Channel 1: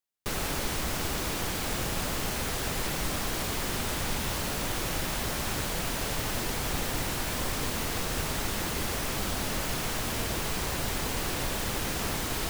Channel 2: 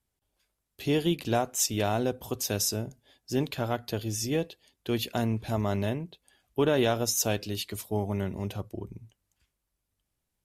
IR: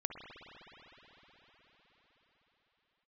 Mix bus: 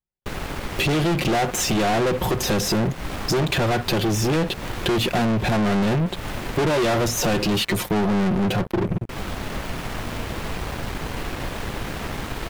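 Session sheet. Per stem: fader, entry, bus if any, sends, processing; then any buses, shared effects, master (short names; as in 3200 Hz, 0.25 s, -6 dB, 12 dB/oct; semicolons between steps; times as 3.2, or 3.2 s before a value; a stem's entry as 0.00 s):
-8.5 dB, 0.00 s, muted 7.62–9.09, no send, echo send -10 dB, dry
+2.0 dB, 0.00 s, no send, no echo send, de-esser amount 70%; comb 5.6 ms, depth 63%; sample leveller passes 5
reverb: off
echo: feedback echo 0.377 s, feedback 47%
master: tone controls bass +2 dB, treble -12 dB; sample leveller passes 3; compressor 4:1, threshold -22 dBFS, peak gain reduction 10 dB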